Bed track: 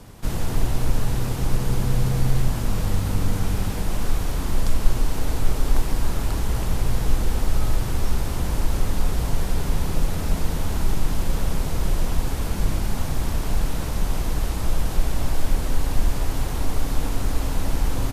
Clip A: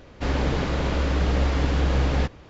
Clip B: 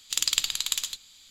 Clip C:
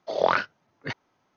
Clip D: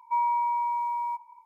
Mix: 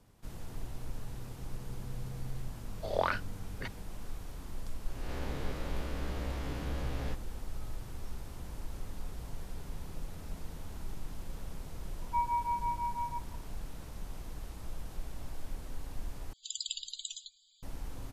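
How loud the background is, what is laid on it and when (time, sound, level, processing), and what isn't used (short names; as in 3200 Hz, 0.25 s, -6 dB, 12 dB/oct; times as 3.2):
bed track -19.5 dB
2.75 add C -9 dB
4.88 add A -17.5 dB + spectral swells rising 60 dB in 0.92 s
12.02 add D -4 dB + beating tremolo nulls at 6 Hz
16.33 replace with B -11 dB + loudest bins only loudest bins 64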